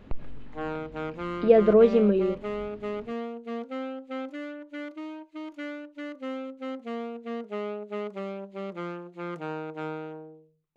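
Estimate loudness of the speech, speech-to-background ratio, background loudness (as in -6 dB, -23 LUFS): -21.0 LUFS, 15.0 dB, -36.0 LUFS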